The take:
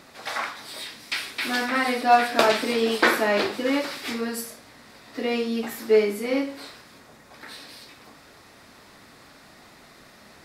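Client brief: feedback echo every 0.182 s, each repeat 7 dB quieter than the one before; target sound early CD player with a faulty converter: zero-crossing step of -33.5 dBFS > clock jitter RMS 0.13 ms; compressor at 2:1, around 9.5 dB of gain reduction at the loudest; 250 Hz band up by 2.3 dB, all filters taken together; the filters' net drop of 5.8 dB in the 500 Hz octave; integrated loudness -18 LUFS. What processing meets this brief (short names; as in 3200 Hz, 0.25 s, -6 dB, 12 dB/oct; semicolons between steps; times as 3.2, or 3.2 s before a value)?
bell 250 Hz +4.5 dB; bell 500 Hz -8.5 dB; compressor 2:1, threshold -33 dBFS; feedback echo 0.182 s, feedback 45%, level -7 dB; zero-crossing step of -33.5 dBFS; clock jitter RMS 0.13 ms; gain +11.5 dB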